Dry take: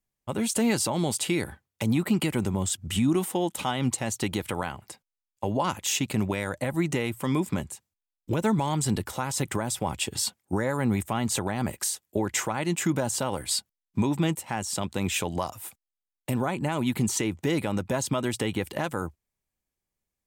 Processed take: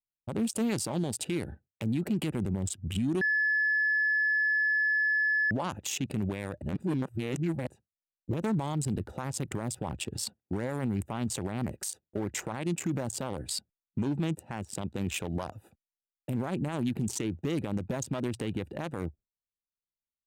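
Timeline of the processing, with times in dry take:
3.21–5.51 s: bleep 1.72 kHz -22 dBFS
6.62–7.67 s: reverse
whole clip: local Wiener filter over 41 samples; gate with hold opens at -52 dBFS; peak limiter -24.5 dBFS; trim +2 dB

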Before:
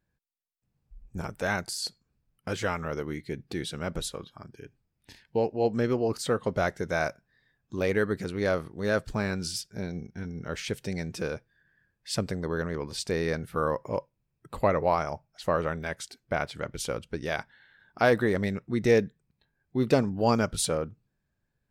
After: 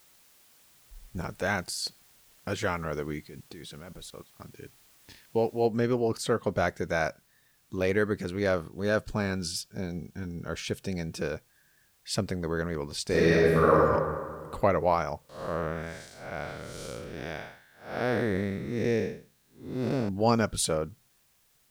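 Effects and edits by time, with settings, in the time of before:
3.27–4.40 s: level held to a coarse grid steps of 22 dB
5.66 s: noise floor step -60 dB -67 dB
8.56–11.21 s: band-stop 2 kHz, Q 6.5
13.07–13.83 s: reverb throw, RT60 1.8 s, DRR -7 dB
15.29–20.09 s: spectral blur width 238 ms

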